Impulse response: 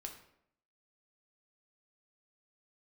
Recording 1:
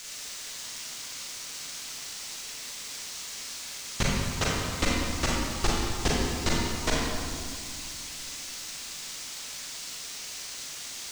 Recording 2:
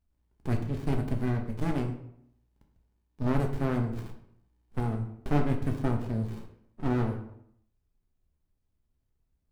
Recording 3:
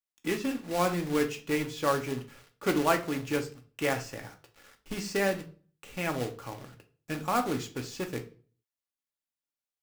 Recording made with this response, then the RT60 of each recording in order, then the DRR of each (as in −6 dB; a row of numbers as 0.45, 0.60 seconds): 2; 2.2, 0.70, 0.40 seconds; −5.0, 2.5, 3.5 decibels